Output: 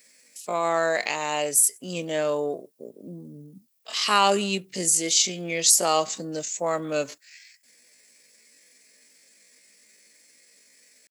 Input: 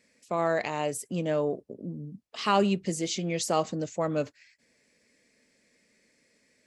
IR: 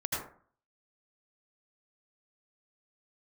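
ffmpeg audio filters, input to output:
-af "atempo=0.6,aemphasis=mode=production:type=riaa,volume=4dB"

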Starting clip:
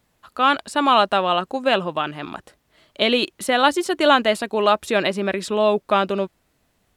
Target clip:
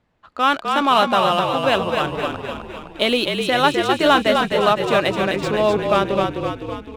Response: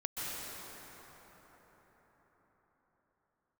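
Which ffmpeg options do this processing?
-filter_complex "[0:a]adynamicsmooth=sensitivity=5.5:basefreq=3300,asplit=2[link_01][link_02];[link_02]asplit=8[link_03][link_04][link_05][link_06][link_07][link_08][link_09][link_10];[link_03]adelay=256,afreqshift=-42,volume=-4.5dB[link_11];[link_04]adelay=512,afreqshift=-84,volume=-9.1dB[link_12];[link_05]adelay=768,afreqshift=-126,volume=-13.7dB[link_13];[link_06]adelay=1024,afreqshift=-168,volume=-18.2dB[link_14];[link_07]adelay=1280,afreqshift=-210,volume=-22.8dB[link_15];[link_08]adelay=1536,afreqshift=-252,volume=-27.4dB[link_16];[link_09]adelay=1792,afreqshift=-294,volume=-32dB[link_17];[link_10]adelay=2048,afreqshift=-336,volume=-36.6dB[link_18];[link_11][link_12][link_13][link_14][link_15][link_16][link_17][link_18]amix=inputs=8:normalize=0[link_19];[link_01][link_19]amix=inputs=2:normalize=0"

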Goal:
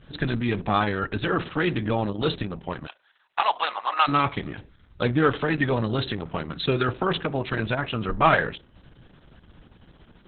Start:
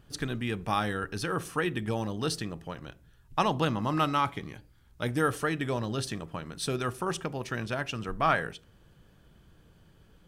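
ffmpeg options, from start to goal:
ffmpeg -i in.wav -filter_complex "[0:a]asplit=3[link_01][link_02][link_03];[link_01]afade=type=out:start_time=2.86:duration=0.02[link_04];[link_02]highpass=frequency=700:width=0.5412,highpass=frequency=700:width=1.3066,afade=type=in:start_time=2.86:duration=0.02,afade=type=out:start_time=4.07:duration=0.02[link_05];[link_03]afade=type=in:start_time=4.07:duration=0.02[link_06];[link_04][link_05][link_06]amix=inputs=3:normalize=0,asoftclip=type=tanh:threshold=-15.5dB,volume=8.5dB" -ar 48000 -c:a libopus -b:a 6k out.opus

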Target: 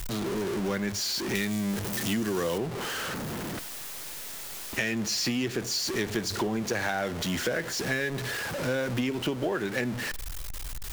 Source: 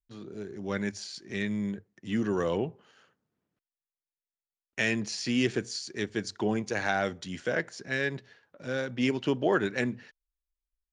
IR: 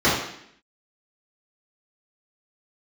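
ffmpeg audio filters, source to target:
-filter_complex "[0:a]aeval=exprs='val(0)+0.5*0.0251*sgn(val(0))':channel_layout=same,asettb=1/sr,asplit=3[link_01][link_02][link_03];[link_01]atrim=end=1.354[link_04];[link_02]atrim=start=1.35:end=2.58,asetpts=PTS-STARTPTS,afade=type=in:duration=0.004:curve=qsin,afade=type=out:start_time=1.226:duration=0.004:curve=qsin,highshelf=frequency=4000:gain=11.5[link_05];[link_03]atrim=start=2.576[link_06];[link_04][link_05]acrossfade=duration=0.004:curve1=hsin:curve2=qsin[link_07];[link_07][link_06]acrossfade=duration=0.004:curve1=qsin:curve2=hsin,acompressor=threshold=-30dB:ratio=10,asplit=2[link_08][link_09];[1:a]atrim=start_sample=2205[link_10];[link_09][link_10]afir=irnorm=-1:irlink=0,volume=-42dB[link_11];[link_08][link_11]amix=inputs=2:normalize=0,volume=4.5dB"

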